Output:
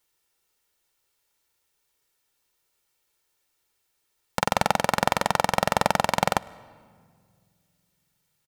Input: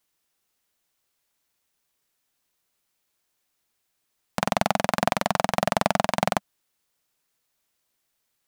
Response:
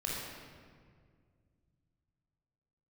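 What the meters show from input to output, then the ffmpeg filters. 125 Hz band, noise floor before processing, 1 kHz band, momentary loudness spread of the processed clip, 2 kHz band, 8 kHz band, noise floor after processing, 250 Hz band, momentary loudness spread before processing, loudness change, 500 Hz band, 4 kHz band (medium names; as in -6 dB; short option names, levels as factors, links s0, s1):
0.0 dB, -76 dBFS, +1.5 dB, 5 LU, +1.5 dB, +2.0 dB, -75 dBFS, -2.5 dB, 6 LU, +0.5 dB, -0.5 dB, +1.5 dB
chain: -filter_complex "[0:a]aecho=1:1:2.2:0.43,asplit=2[s0][s1];[1:a]atrim=start_sample=2205,adelay=105[s2];[s1][s2]afir=irnorm=-1:irlink=0,volume=0.0531[s3];[s0][s3]amix=inputs=2:normalize=0,volume=1.12"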